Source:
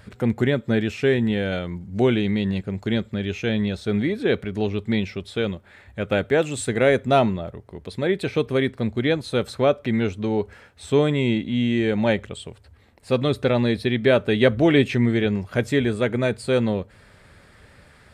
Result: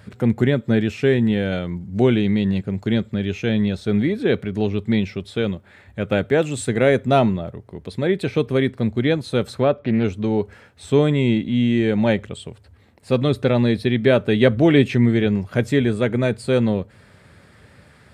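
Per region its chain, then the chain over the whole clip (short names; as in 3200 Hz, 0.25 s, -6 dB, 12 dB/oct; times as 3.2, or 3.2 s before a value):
9.63–10.04 air absorption 220 m + Doppler distortion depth 0.17 ms
whole clip: HPF 99 Hz; low shelf 250 Hz +7 dB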